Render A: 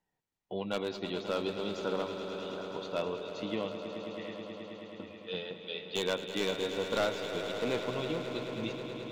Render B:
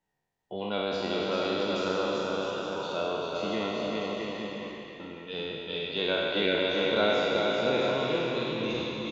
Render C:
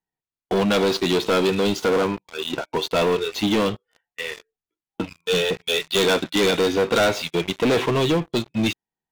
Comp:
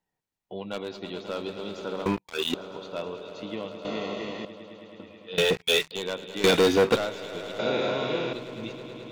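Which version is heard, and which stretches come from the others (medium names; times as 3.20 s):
A
2.06–2.54 s: from C
3.85–4.45 s: from B
5.38–5.91 s: from C
6.44–6.96 s: from C
7.59–8.33 s: from B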